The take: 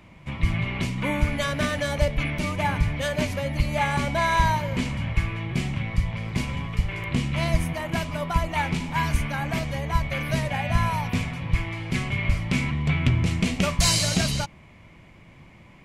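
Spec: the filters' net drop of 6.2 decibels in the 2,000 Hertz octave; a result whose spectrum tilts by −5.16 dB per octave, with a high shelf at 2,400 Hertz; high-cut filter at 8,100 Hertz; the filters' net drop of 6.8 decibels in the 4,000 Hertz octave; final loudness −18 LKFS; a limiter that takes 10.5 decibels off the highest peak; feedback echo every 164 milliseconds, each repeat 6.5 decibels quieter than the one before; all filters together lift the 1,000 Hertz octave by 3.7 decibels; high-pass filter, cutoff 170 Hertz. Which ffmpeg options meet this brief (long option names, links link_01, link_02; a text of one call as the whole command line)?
ffmpeg -i in.wav -af "highpass=170,lowpass=8100,equalizer=frequency=1000:width_type=o:gain=6,equalizer=frequency=2000:width_type=o:gain=-6.5,highshelf=frequency=2400:gain=-4,equalizer=frequency=4000:width_type=o:gain=-3,alimiter=limit=-20.5dB:level=0:latency=1,aecho=1:1:164|328|492|656|820|984:0.473|0.222|0.105|0.0491|0.0231|0.0109,volume=11.5dB" out.wav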